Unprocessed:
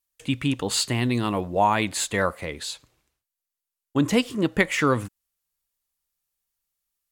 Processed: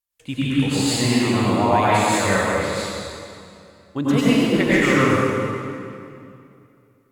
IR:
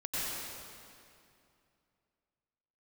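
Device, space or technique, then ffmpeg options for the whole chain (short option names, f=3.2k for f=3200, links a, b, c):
swimming-pool hall: -filter_complex "[1:a]atrim=start_sample=2205[a];[0:a][a]afir=irnorm=-1:irlink=0,highshelf=f=5.5k:g=-6.5,highshelf=f=10k:g=5.5"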